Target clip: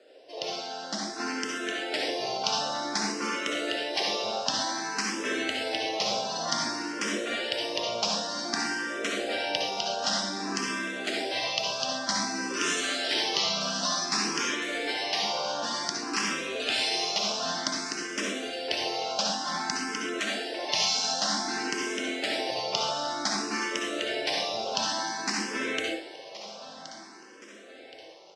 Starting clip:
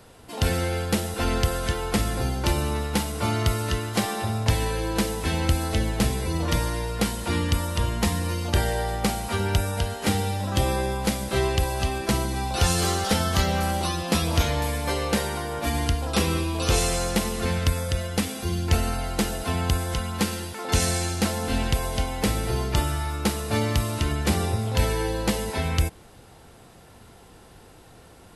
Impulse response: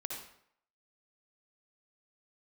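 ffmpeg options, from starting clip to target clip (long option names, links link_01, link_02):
-filter_complex "[0:a]highpass=frequency=290:width=0.5412,highpass=frequency=290:width=1.3066,equalizer=frequency=590:width_type=q:width=4:gain=7,equalizer=frequency=880:width_type=q:width=4:gain=-9,equalizer=frequency=1300:width_type=q:width=4:gain=-4,equalizer=frequency=2200:width_type=q:width=4:gain=-4,equalizer=frequency=3700:width_type=q:width=4:gain=-3,equalizer=frequency=5400:width_type=q:width=4:gain=7,lowpass=frequency=6100:width=0.5412,lowpass=frequency=6100:width=1.3066[link_01];[1:a]atrim=start_sample=2205,afade=type=out:start_time=0.19:duration=0.01,atrim=end_sample=8820[link_02];[link_01][link_02]afir=irnorm=-1:irlink=0,dynaudnorm=framelen=130:gausssize=21:maxgain=7dB,asettb=1/sr,asplit=3[link_03][link_04][link_05];[link_03]atrim=end=19.324[link_06];[link_04]atrim=start=19.32:end=21.14,asetpts=PTS-STARTPTS,afade=type=in:duration=0.004:curve=qsin,afade=type=out:start_time=1.816:duration=0.004:curve=qsin,equalizer=frequency=470:width_type=o:width=1.2:gain=9[link_07];[link_05]atrim=start=21.136[link_08];[link_06][link_07]acrossfade=duration=0.004:curve1=hsin:curve2=qsin[link_09];[link_09][link_08]acrossfade=duration=0.004:curve1=qsin:curve2=hsin,afftfilt=real='re*lt(hypot(re,im),0.282)':imag='im*lt(hypot(re,im),0.282)':win_size=1024:overlap=0.75,aecho=1:1:1072|2144|3216|4288|5360:0.178|0.0925|0.0481|0.025|0.013,asplit=2[link_10][link_11];[link_11]afreqshift=0.54[link_12];[link_10][link_12]amix=inputs=2:normalize=1"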